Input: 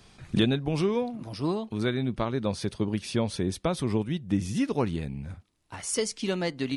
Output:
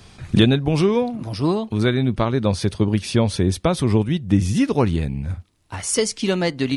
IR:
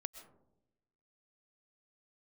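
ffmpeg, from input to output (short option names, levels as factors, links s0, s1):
-af "equalizer=f=87:w=1.8:g=6.5,volume=2.51"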